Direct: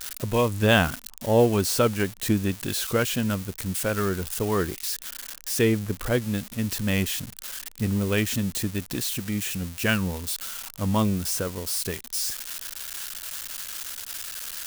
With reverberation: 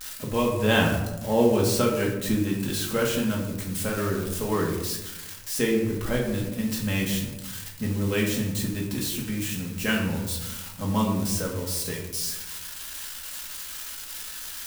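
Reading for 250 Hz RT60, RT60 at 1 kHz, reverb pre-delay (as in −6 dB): 1.3 s, 0.90 s, 4 ms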